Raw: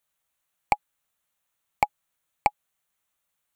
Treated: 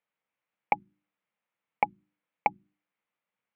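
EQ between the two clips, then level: cabinet simulation 130–3000 Hz, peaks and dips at 130 Hz +4 dB, 200 Hz +10 dB, 290 Hz +6 dB, 480 Hz +7 dB, 910 Hz +3 dB, 2.2 kHz +5 dB; hum notches 50/100/150/200/250/300 Hz; hum notches 60/120/180/240/300/360 Hz; -5.5 dB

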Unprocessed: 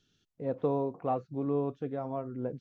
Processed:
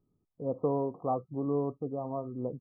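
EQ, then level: brick-wall FIR low-pass 1.3 kHz; 0.0 dB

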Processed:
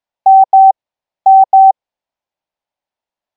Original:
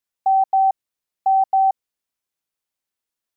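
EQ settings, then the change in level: distance through air 150 m; high-order bell 720 Hz +9 dB 1 oct; +2.5 dB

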